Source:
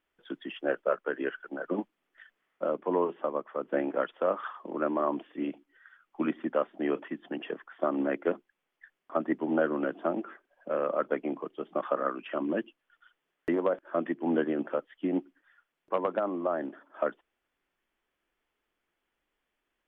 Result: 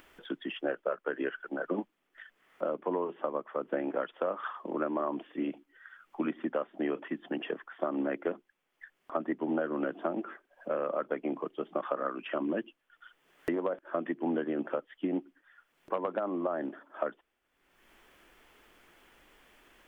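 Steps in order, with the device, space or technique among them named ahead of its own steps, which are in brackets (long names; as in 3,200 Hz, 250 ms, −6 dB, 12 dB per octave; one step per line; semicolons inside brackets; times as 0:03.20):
upward and downward compression (upward compression, threshold −46 dBFS; downward compressor 5 to 1, threshold −30 dBFS, peak gain reduction 9 dB)
level +2 dB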